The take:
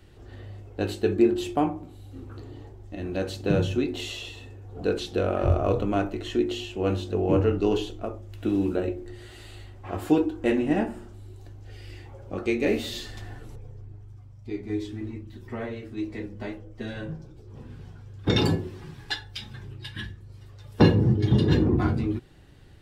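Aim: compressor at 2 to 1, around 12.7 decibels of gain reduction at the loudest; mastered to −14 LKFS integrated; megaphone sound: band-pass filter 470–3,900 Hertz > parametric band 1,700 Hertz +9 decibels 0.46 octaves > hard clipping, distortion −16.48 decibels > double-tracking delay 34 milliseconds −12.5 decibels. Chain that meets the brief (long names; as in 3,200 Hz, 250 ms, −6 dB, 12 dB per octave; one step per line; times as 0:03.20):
downward compressor 2 to 1, threshold −37 dBFS
band-pass filter 470–3,900 Hz
parametric band 1,700 Hz +9 dB 0.46 octaves
hard clipping −29.5 dBFS
double-tracking delay 34 ms −12.5 dB
level +27 dB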